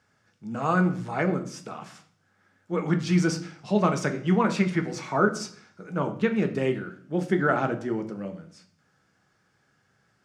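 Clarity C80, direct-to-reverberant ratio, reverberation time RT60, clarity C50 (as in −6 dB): 16.5 dB, 5.5 dB, 0.50 s, 13.0 dB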